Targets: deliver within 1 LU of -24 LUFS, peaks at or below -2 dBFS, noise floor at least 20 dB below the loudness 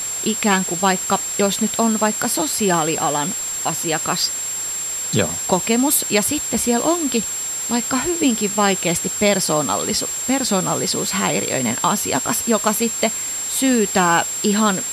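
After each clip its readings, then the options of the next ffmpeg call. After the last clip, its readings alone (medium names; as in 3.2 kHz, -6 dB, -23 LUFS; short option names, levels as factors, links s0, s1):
steady tone 7.5 kHz; tone level -23 dBFS; noise floor -25 dBFS; noise floor target -39 dBFS; loudness -18.5 LUFS; peak level -2.0 dBFS; loudness target -24.0 LUFS
-> -af "bandreject=f=7500:w=30"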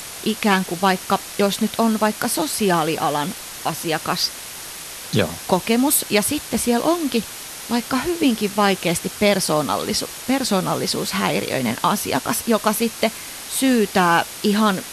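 steady tone not found; noise floor -34 dBFS; noise floor target -40 dBFS
-> -af "afftdn=nr=6:nf=-34"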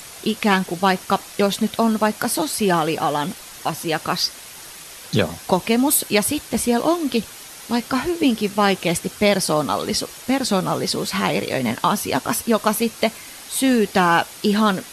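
noise floor -39 dBFS; noise floor target -41 dBFS
-> -af "afftdn=nr=6:nf=-39"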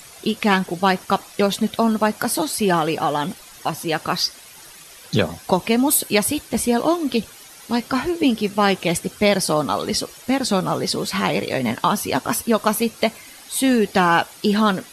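noise floor -43 dBFS; loudness -20.5 LUFS; peak level -3.0 dBFS; loudness target -24.0 LUFS
-> -af "volume=0.668"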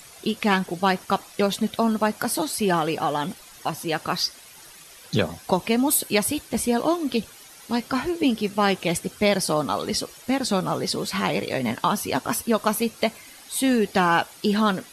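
loudness -24.0 LUFS; peak level -6.5 dBFS; noise floor -47 dBFS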